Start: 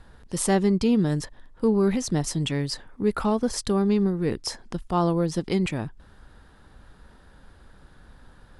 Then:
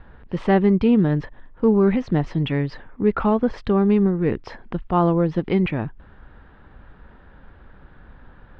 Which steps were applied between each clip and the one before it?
low-pass 2.8 kHz 24 dB/octave; trim +4.5 dB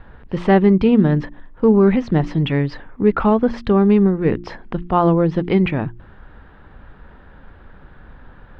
de-hum 58.42 Hz, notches 6; trim +4 dB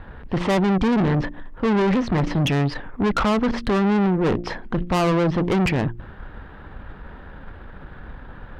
valve stage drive 24 dB, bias 0.55; trim +7 dB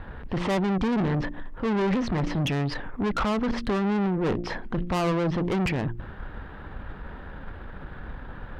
peak limiter -20.5 dBFS, peak gain reduction 7 dB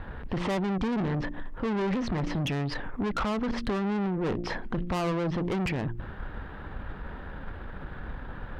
compression, threshold -26 dBFS, peak gain reduction 4 dB

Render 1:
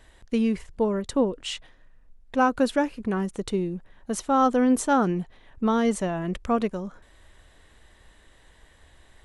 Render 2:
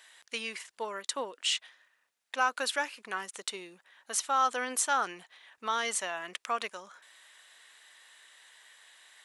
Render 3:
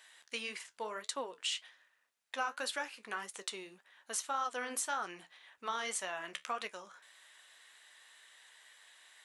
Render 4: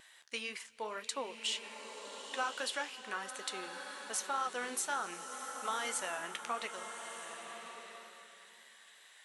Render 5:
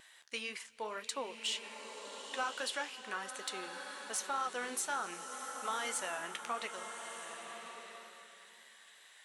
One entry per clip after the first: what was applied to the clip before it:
Bessel high-pass 1.8 kHz, order 2; in parallel at -0.5 dB: peak limiter -26.5 dBFS, peak gain reduction 10.5 dB
compression 2.5:1, threshold -31 dBFS, peak gain reduction 7 dB; flange 1.8 Hz, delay 9.5 ms, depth 5.1 ms, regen -58%; trim +1 dB
wow and flutter 20 cents; swelling reverb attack 1250 ms, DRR 6 dB
saturation -23.5 dBFS, distortion -26 dB

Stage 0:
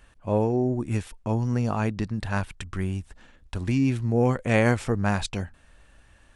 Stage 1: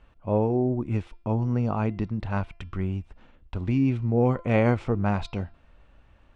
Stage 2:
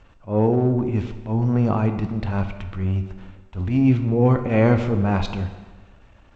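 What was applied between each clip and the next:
Bessel low-pass 2.2 kHz, order 2; peaking EQ 1.7 kHz -10.5 dB 0.21 oct; de-hum 342.4 Hz, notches 16
transient shaper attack -12 dB, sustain +2 dB; plate-style reverb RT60 1.3 s, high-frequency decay 0.8×, DRR 8 dB; trim +6 dB; G.722 64 kbps 16 kHz

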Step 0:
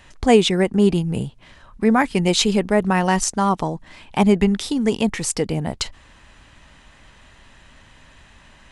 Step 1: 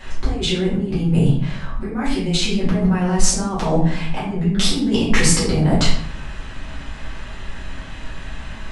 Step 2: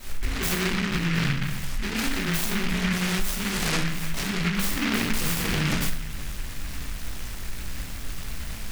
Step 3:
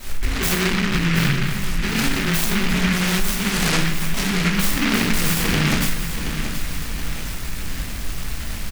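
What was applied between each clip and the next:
treble shelf 6 kHz -6 dB; compressor with a negative ratio -27 dBFS, ratio -1; simulated room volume 87 m³, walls mixed, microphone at 2.3 m; trim -3.5 dB
spectral sustain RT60 0.44 s; compression 4:1, threshold -18 dBFS, peak gain reduction 11 dB; delay time shaken by noise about 1.9 kHz, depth 0.43 ms; trim -4 dB
feedback delay 725 ms, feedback 52%, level -10 dB; trim +5.5 dB

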